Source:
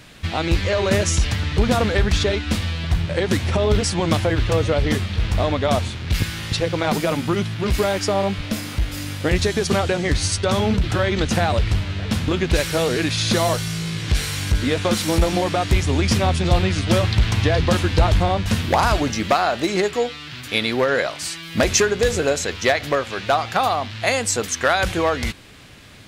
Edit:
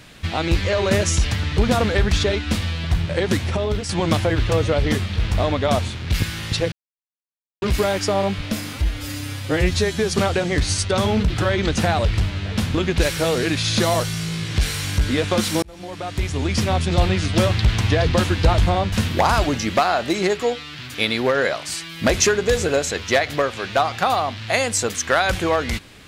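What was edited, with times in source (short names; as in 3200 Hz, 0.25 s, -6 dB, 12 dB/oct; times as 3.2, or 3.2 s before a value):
3.31–3.89 fade out linear, to -8.5 dB
6.72–7.62 mute
8.73–9.66 stretch 1.5×
15.16–16.87 fade in equal-power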